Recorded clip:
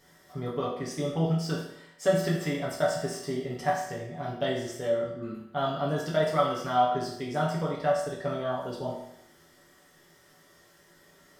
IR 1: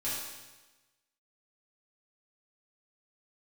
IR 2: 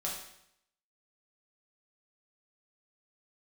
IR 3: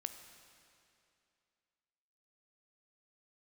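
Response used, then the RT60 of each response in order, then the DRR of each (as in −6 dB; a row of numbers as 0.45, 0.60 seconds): 2; 1.2, 0.75, 2.6 seconds; −10.0, −5.0, 7.5 decibels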